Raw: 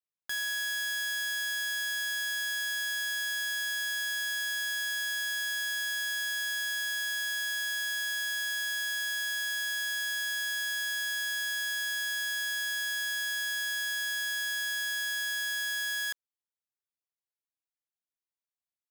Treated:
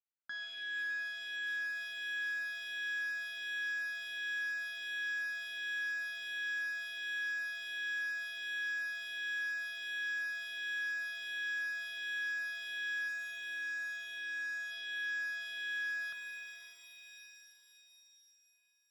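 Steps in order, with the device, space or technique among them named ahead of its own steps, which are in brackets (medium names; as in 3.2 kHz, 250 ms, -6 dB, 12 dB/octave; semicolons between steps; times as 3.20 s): 13.08–14.71 s: resonant high shelf 6.2 kHz +8 dB, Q 3; barber-pole phaser into a guitar amplifier (barber-pole phaser -1.4 Hz; saturation -26.5 dBFS, distortion -18 dB; cabinet simulation 78–3800 Hz, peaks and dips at 290 Hz +3 dB, 870 Hz -6 dB, 1.4 kHz +8 dB); pitch-shifted reverb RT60 3.4 s, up +7 st, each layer -2 dB, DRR 5.5 dB; trim -6 dB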